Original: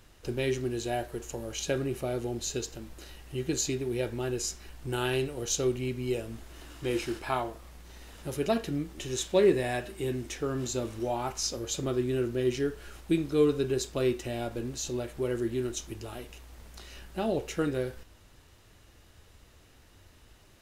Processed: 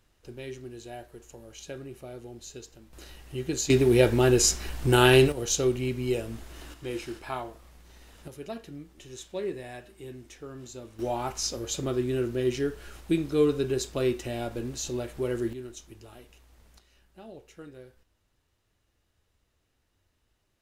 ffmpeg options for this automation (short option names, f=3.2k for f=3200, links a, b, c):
-af "asetnsamples=n=441:p=0,asendcmd='2.93 volume volume 0dB;3.7 volume volume 11.5dB;5.32 volume volume 3dB;6.74 volume volume -4dB;8.28 volume volume -10.5dB;10.99 volume volume 1dB;15.53 volume volume -8.5dB;16.79 volume volume -16.5dB',volume=-10dB"